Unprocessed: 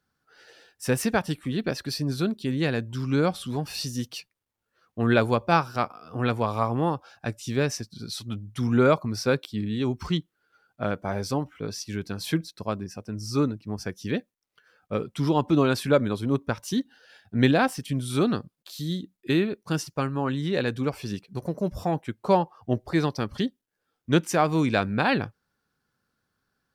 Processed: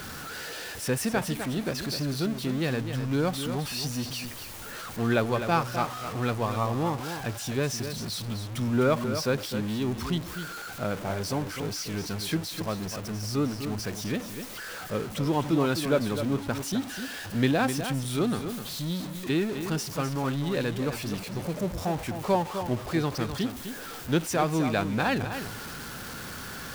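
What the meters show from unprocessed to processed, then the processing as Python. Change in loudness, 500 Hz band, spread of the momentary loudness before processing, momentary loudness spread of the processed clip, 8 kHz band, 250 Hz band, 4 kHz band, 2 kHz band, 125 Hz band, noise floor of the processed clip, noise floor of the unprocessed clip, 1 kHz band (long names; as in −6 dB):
−2.5 dB, −3.0 dB, 12 LU, 11 LU, +3.0 dB, −2.5 dB, +0.5 dB, −2.0 dB, −2.0 dB, −39 dBFS, −81 dBFS, −2.5 dB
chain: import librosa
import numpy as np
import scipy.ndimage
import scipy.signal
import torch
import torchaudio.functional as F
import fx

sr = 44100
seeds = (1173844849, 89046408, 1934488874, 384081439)

p1 = x + 0.5 * 10.0 ** (-28.0 / 20.0) * np.sign(x)
p2 = p1 + fx.echo_single(p1, sr, ms=255, db=-9.0, dry=0)
y = p2 * librosa.db_to_amplitude(-5.0)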